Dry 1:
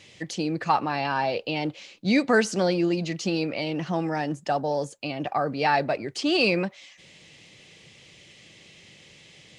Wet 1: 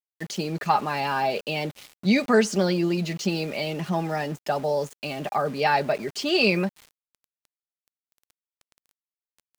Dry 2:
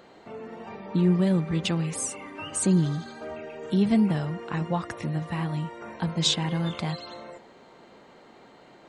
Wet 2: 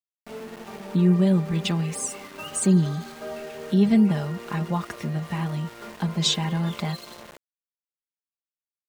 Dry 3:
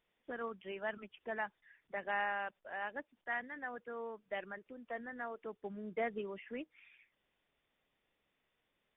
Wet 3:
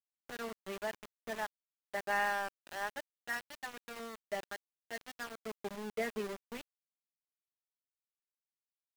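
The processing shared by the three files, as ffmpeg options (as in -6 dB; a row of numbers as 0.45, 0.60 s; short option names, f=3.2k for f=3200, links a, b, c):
-af "aecho=1:1:4.9:0.54,aeval=exprs='val(0)*gte(abs(val(0)),0.0106)':c=same"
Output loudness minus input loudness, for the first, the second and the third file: +0.5, +2.5, +1.5 LU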